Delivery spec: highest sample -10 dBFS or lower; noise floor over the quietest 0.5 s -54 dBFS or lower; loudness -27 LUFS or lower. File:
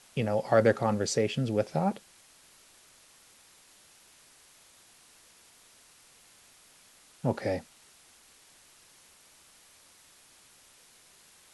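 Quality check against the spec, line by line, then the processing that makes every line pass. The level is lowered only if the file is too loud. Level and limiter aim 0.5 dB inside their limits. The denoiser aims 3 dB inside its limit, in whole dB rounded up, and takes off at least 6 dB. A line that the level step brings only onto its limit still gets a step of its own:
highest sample -10.5 dBFS: OK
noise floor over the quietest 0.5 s -59 dBFS: OK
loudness -28.5 LUFS: OK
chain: none

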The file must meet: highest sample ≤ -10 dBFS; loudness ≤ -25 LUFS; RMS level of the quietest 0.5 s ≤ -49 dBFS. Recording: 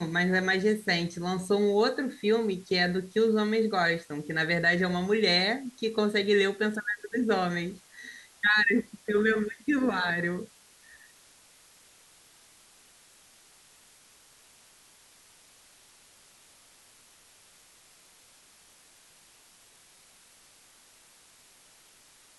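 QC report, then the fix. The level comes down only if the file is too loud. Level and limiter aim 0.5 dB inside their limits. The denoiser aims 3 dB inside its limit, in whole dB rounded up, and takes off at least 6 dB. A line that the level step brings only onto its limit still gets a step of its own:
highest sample -12.0 dBFS: OK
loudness -27.0 LUFS: OK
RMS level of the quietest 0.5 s -58 dBFS: OK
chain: none

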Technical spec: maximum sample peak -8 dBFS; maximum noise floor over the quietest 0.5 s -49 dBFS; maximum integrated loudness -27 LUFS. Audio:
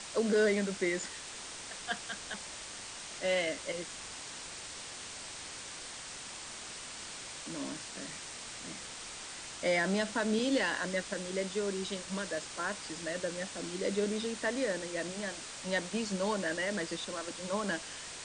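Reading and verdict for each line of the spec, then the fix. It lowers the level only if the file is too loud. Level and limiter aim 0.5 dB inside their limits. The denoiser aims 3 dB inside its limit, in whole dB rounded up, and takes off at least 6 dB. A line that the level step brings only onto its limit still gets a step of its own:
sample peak -18.5 dBFS: OK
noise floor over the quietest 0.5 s -45 dBFS: fail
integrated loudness -35.5 LUFS: OK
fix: denoiser 7 dB, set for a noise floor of -45 dBFS

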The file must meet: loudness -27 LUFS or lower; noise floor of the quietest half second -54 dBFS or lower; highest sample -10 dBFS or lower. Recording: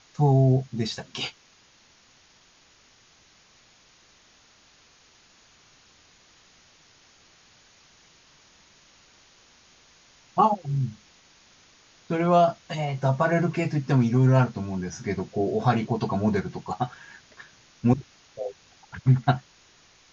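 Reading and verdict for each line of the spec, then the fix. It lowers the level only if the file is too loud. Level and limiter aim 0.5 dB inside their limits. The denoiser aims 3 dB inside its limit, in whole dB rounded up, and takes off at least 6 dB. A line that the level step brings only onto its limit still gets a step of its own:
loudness -25.0 LUFS: fail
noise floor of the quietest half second -58 dBFS: OK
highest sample -7.5 dBFS: fail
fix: gain -2.5 dB; limiter -10.5 dBFS

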